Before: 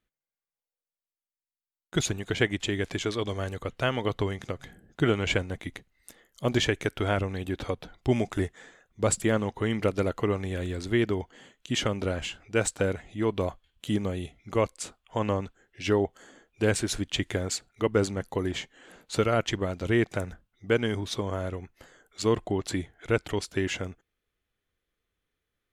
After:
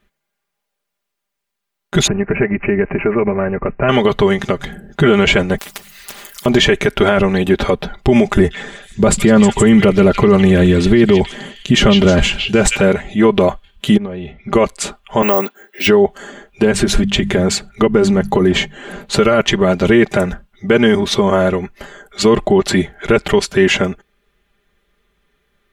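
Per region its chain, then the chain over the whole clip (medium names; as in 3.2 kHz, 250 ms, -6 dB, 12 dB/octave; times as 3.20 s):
2.07–3.89 s: tape spacing loss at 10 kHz 30 dB + compression 5:1, threshold -29 dBFS + careless resampling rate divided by 8×, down none, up filtered
5.58–6.46 s: pre-emphasis filter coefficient 0.97 + hum notches 50/100/150/200 Hz + spectrum-flattening compressor 10:1
8.35–12.80 s: bass shelf 260 Hz +9 dB + repeats whose band climbs or falls 157 ms, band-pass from 3.4 kHz, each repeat 0.7 oct, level -2 dB
13.97–14.53 s: compression 10:1, threshold -39 dBFS + distance through air 250 m + doubling 13 ms -13 dB
15.22–15.87 s: high-pass 250 Hz 24 dB/octave + careless resampling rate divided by 2×, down none, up zero stuff
16.62–19.17 s: bass shelf 380 Hz +6.5 dB + hum notches 50/100/150/200 Hz + compression 3:1, threshold -28 dBFS
whole clip: tone controls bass 0 dB, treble -7 dB; comb 5 ms, depth 78%; loudness maximiser +19 dB; trim -1 dB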